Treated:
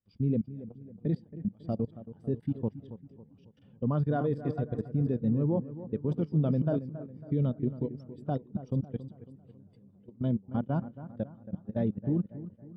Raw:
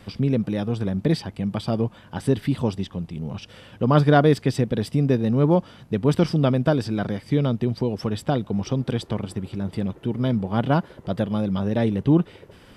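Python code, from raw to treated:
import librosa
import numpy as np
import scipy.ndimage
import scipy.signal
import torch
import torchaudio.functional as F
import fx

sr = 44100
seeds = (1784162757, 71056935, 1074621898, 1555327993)

y = fx.reverse_delay(x, sr, ms=292, wet_db=-10.0)
y = fx.level_steps(y, sr, step_db=22)
y = fx.echo_bbd(y, sr, ms=275, stages=4096, feedback_pct=57, wet_db=-9.5)
y = fx.spectral_expand(y, sr, expansion=1.5)
y = y * 10.0 ** (-6.5 / 20.0)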